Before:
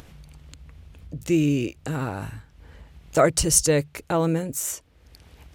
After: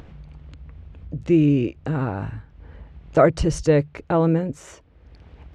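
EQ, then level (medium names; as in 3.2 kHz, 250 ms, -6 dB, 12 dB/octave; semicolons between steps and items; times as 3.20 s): tape spacing loss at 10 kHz 31 dB; +5.0 dB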